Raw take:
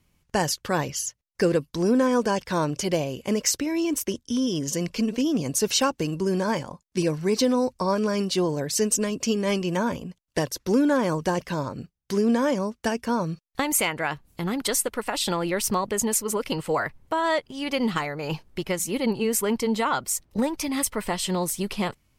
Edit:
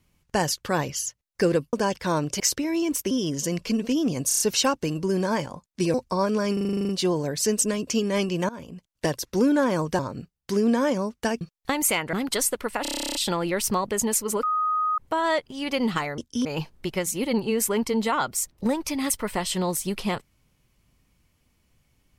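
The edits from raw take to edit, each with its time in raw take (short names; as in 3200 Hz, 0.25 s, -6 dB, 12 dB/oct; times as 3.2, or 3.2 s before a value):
1.73–2.19 cut
2.86–3.42 cut
4.13–4.4 move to 18.18
5.57 stutter 0.03 s, 5 plays
7.11–7.63 cut
8.22 stutter 0.04 s, 10 plays
9.82–10.24 fade in, from -20 dB
11.32–11.6 cut
13.02–13.31 cut
14.03–14.46 cut
15.15 stutter 0.03 s, 12 plays
16.43–16.98 bleep 1250 Hz -21 dBFS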